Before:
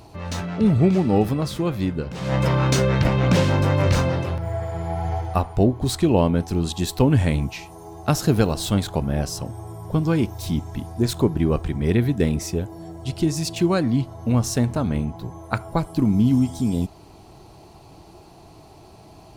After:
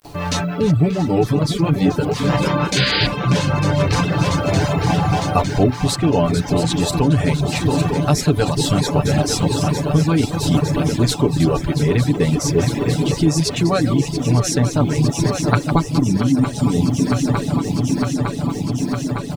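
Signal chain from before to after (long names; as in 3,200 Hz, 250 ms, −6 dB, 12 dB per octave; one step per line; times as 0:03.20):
delay that plays each chunk backwards 256 ms, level −9 dB
Bessel low-pass filter 8,000 Hz, order 2
comb filter 6.9 ms, depth 63%
noise gate with hold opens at −34 dBFS
hum removal 131.2 Hz, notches 5
bit reduction 10 bits
on a send: feedback echo with a long and a short gap by turns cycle 907 ms, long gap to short 3 to 1, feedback 77%, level −10.5 dB
on the sum: reverb reduction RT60 0.68 s
high-shelf EQ 4,500 Hz +4.5 dB
in parallel at 0 dB: brickwall limiter −12.5 dBFS, peak gain reduction 10 dB
on the sum: sound drawn into the spectrogram noise, 0:02.76–0:03.07, 1,400–5,000 Hz −14 dBFS
speech leveller within 4 dB 0.5 s
level −1.5 dB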